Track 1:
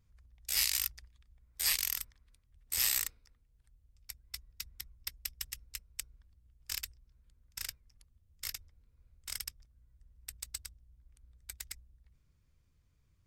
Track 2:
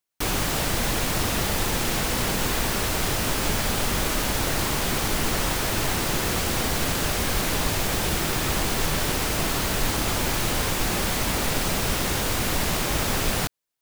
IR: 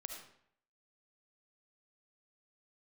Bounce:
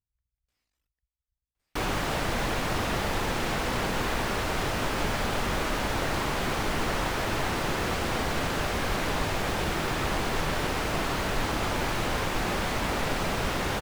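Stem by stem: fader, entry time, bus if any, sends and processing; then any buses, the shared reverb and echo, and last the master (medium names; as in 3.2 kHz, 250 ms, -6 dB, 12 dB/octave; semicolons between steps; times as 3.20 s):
-19.0 dB, 0.00 s, no send, reverb removal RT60 1 s; compression, threshold -41 dBFS, peak gain reduction 14.5 dB; valve stage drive 51 dB, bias 0.6
+2.5 dB, 1.55 s, no send, bass shelf 470 Hz -7 dB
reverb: none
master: low-pass 1.5 kHz 6 dB/octave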